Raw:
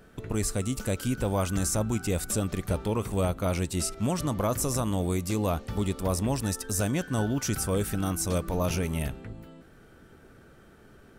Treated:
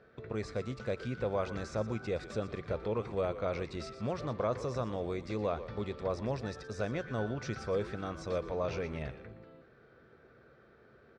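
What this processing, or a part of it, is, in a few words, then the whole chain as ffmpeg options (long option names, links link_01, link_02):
frequency-shifting delay pedal into a guitar cabinet: -filter_complex "[0:a]asplit=5[link_01][link_02][link_03][link_04][link_05];[link_02]adelay=119,afreqshift=-130,volume=-12.5dB[link_06];[link_03]adelay=238,afreqshift=-260,volume=-21.6dB[link_07];[link_04]adelay=357,afreqshift=-390,volume=-30.7dB[link_08];[link_05]adelay=476,afreqshift=-520,volume=-39.9dB[link_09];[link_01][link_06][link_07][link_08][link_09]amix=inputs=5:normalize=0,highpass=91,equalizer=frequency=94:width_type=q:width=4:gain=-7,equalizer=frequency=180:width_type=q:width=4:gain=-9,equalizer=frequency=280:width_type=q:width=4:gain=-9,equalizer=frequency=500:width_type=q:width=4:gain=4,equalizer=frequency=880:width_type=q:width=4:gain=-5,equalizer=frequency=3000:width_type=q:width=4:gain=-10,lowpass=frequency=4100:width=0.5412,lowpass=frequency=4100:width=1.3066,volume=-4dB"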